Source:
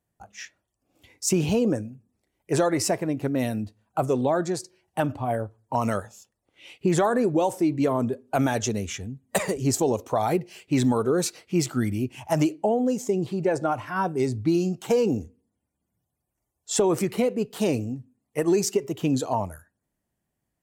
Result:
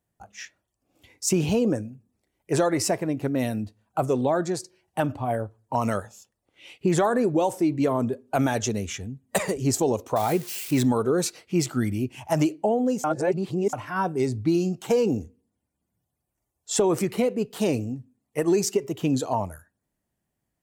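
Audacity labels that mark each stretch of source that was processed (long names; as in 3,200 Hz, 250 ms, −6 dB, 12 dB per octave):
10.160000	10.830000	spike at every zero crossing of −26.5 dBFS
13.040000	13.730000	reverse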